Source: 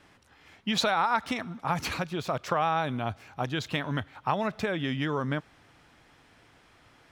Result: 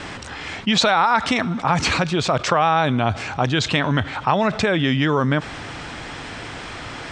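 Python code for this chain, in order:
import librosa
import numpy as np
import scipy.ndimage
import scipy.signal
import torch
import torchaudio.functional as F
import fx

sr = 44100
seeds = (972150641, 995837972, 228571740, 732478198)

y = scipy.signal.sosfilt(scipy.signal.ellip(4, 1.0, 60, 8400.0, 'lowpass', fs=sr, output='sos'), x)
y = fx.env_flatten(y, sr, amount_pct=50)
y = y * librosa.db_to_amplitude(8.5)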